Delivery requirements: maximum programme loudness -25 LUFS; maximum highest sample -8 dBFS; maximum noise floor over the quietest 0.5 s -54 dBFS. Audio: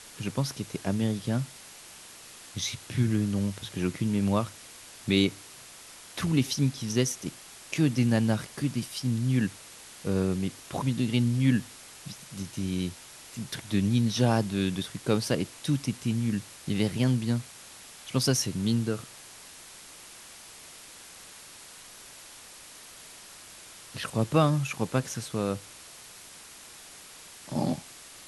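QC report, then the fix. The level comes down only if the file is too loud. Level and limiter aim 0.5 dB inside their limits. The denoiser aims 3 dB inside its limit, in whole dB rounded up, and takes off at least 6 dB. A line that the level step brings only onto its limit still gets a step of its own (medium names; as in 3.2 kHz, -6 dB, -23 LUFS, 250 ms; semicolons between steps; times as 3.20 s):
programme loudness -29.0 LUFS: pass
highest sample -9.5 dBFS: pass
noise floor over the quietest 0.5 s -48 dBFS: fail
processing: noise reduction 9 dB, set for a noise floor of -48 dBFS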